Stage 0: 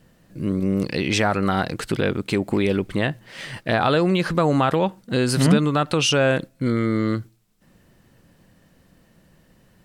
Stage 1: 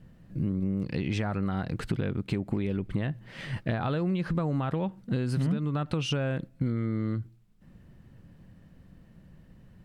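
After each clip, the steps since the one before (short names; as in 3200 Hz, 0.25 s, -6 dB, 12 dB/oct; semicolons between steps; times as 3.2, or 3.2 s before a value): tone controls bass +11 dB, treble -8 dB; compressor 6:1, threshold -20 dBFS, peak gain reduction 15.5 dB; gain -5.5 dB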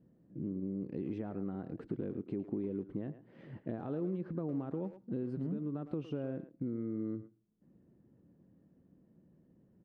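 band-pass 330 Hz, Q 1.7; speakerphone echo 0.11 s, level -11 dB; gain -3 dB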